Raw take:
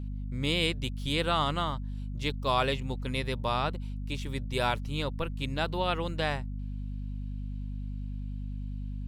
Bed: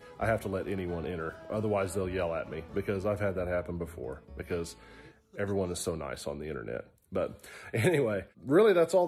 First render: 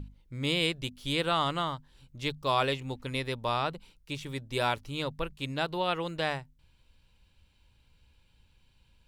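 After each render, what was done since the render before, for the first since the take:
mains-hum notches 50/100/150/200/250 Hz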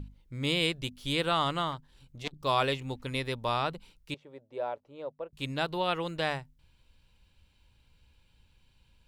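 0:01.71–0:02.42: saturating transformer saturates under 1,500 Hz
0:04.14–0:05.33: resonant band-pass 580 Hz, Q 2.6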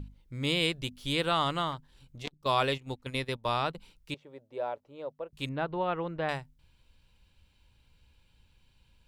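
0:02.26–0:03.75: noise gate −37 dBFS, range −13 dB
0:05.49–0:06.29: low-pass filter 1,600 Hz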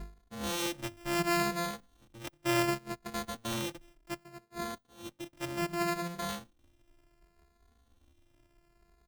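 samples sorted by size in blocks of 128 samples
barber-pole flanger 2.4 ms +0.67 Hz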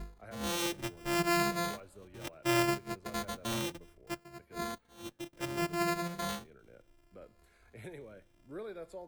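mix in bed −21 dB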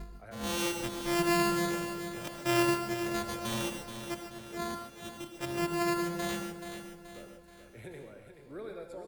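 repeating echo 429 ms, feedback 46%, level −9 dB
reverb whose tail is shaped and stops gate 170 ms rising, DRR 5 dB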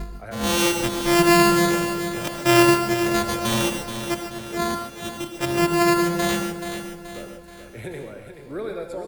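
level +12 dB

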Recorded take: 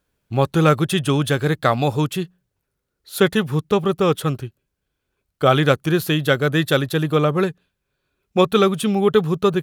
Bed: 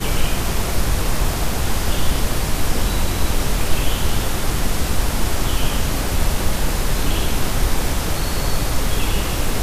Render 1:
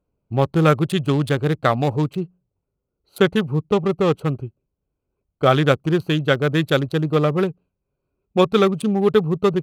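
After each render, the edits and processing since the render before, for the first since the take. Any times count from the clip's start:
adaptive Wiener filter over 25 samples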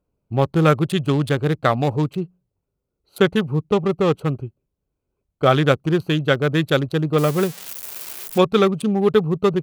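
0:07.18–0:08.38: spike at every zero crossing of −17.5 dBFS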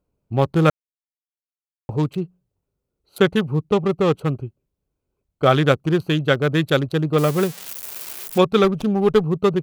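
0:00.70–0:01.89: silence
0:08.64–0:09.24: windowed peak hold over 5 samples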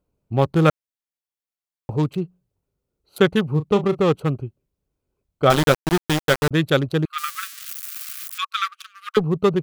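0:03.51–0:04.01: double-tracking delay 34 ms −12 dB
0:05.50–0:06.51: centre clipping without the shift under −16.5 dBFS
0:07.05–0:09.17: linear-phase brick-wall high-pass 1,100 Hz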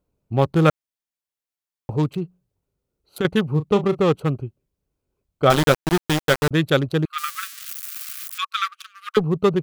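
0:02.13–0:03.25: downward compressor, threshold −19 dBFS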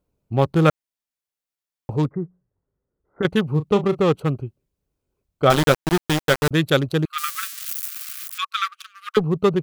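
0:02.05–0:03.23: Chebyshev low-pass filter 2,000 Hz, order 8
0:06.45–0:07.88: high-shelf EQ 4,500 Hz +5 dB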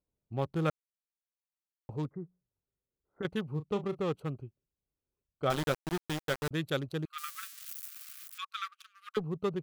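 level −14.5 dB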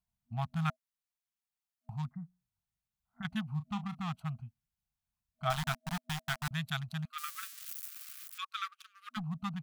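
brick-wall band-stop 240–640 Hz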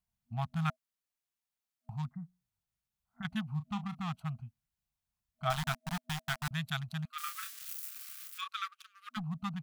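0:07.17–0:08.56: double-tracking delay 30 ms −5.5 dB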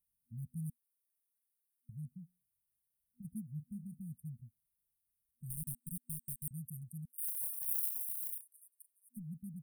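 brick-wall band-stop 510–8,500 Hz
tilt shelving filter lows −8 dB

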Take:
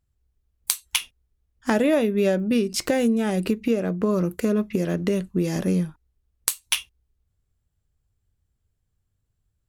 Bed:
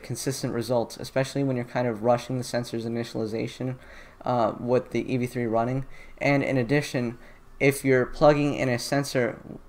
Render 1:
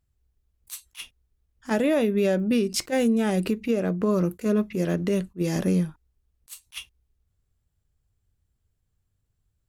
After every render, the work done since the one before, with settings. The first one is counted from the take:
brickwall limiter −14.5 dBFS, peak gain reduction 10 dB
level that may rise only so fast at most 430 dB per second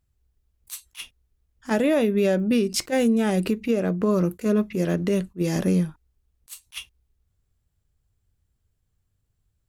level +1.5 dB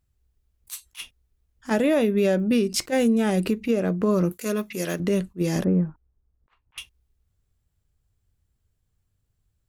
0:04.32–0:05.00: spectral tilt +3 dB per octave
0:05.64–0:06.78: Bessel low-pass filter 1,100 Hz, order 4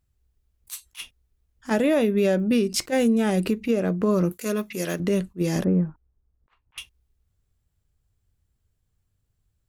no processing that can be heard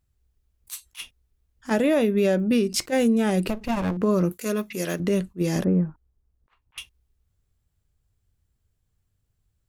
0:03.48–0:03.97: lower of the sound and its delayed copy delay 1.1 ms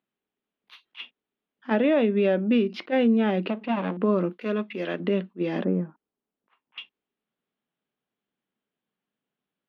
elliptic band-pass filter 210–3,300 Hz, stop band 40 dB

